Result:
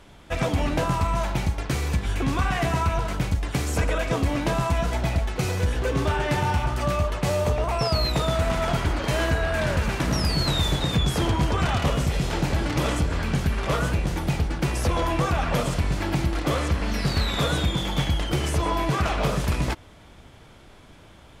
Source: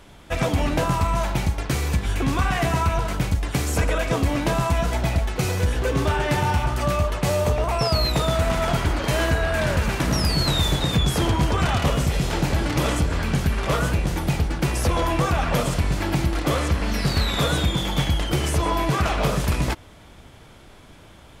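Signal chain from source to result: high shelf 11000 Hz -6.5 dB; gain -2 dB

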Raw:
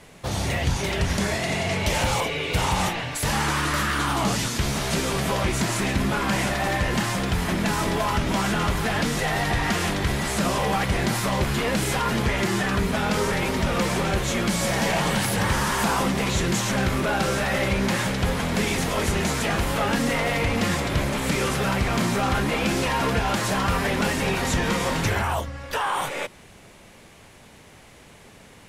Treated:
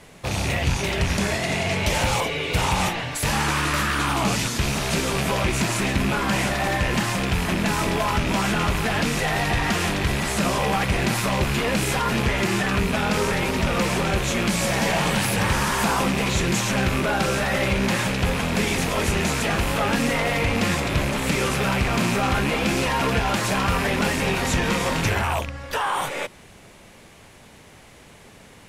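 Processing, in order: rattling part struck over -27 dBFS, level -19 dBFS; gain +1 dB

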